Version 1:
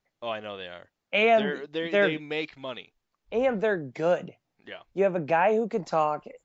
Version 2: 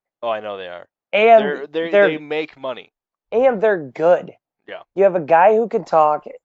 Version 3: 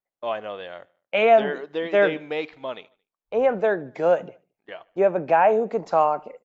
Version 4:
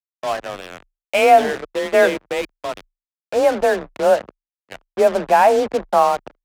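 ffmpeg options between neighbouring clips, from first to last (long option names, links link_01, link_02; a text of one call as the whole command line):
ffmpeg -i in.wav -af "agate=range=-16dB:threshold=-46dB:ratio=16:detection=peak,equalizer=frequency=740:width_type=o:width=2.7:gain=10.5,volume=1dB" out.wav
ffmpeg -i in.wav -af "aecho=1:1:74|148|222:0.0631|0.0315|0.0158,volume=-5.5dB" out.wav
ffmpeg -i in.wav -af "acrusher=bits=4:mix=0:aa=0.5,adynamicsmooth=sensitivity=7:basefreq=970,afreqshift=27,volume=4.5dB" out.wav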